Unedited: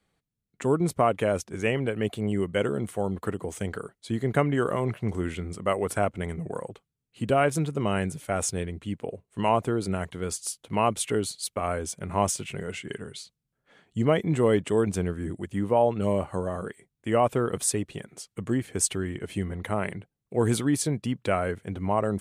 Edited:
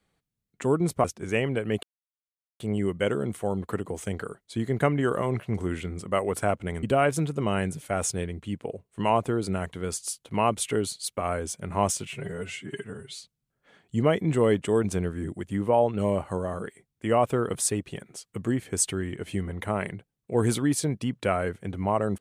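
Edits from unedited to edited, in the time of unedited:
1.04–1.35 cut
2.14 insert silence 0.77 s
6.37–7.22 cut
12.47–13.2 stretch 1.5×

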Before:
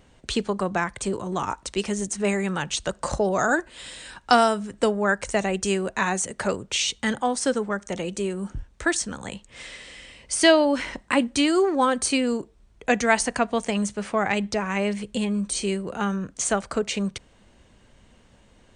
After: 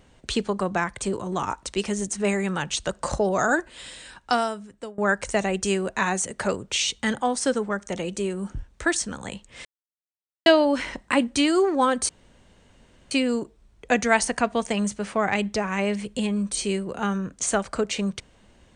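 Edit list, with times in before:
3.71–4.98 fade out, to -21 dB
9.65–10.46 mute
12.09 insert room tone 1.02 s

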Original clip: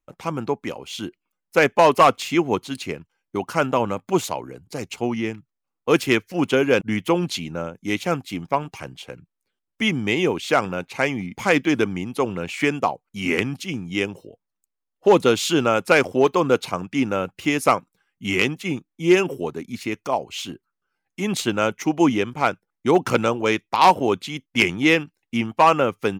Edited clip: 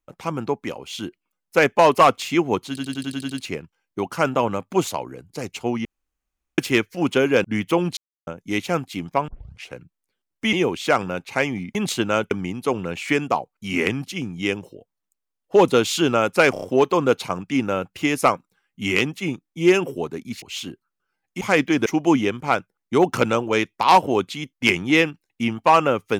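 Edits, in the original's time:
2.68 stutter 0.09 s, 8 plays
5.22–5.95 room tone
7.34–7.64 mute
8.65 tape start 0.43 s
9.9–10.16 cut
11.38–11.83 swap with 21.23–21.79
16.05 stutter 0.03 s, 4 plays
19.85–20.24 cut

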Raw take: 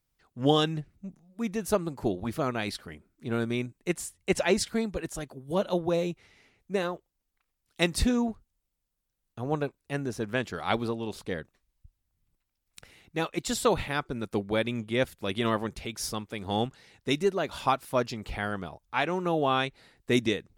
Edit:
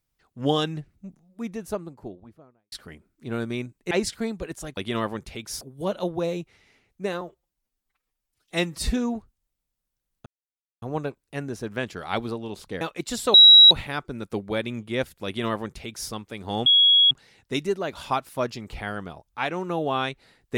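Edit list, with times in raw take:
1.07–2.72 studio fade out
3.91–4.45 cut
6.91–8.05 stretch 1.5×
9.39 insert silence 0.56 s
11.38–13.19 cut
13.72 add tone 3870 Hz -7 dBFS 0.37 s
15.27–16.11 copy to 5.31
16.67 add tone 3330 Hz -13 dBFS 0.45 s

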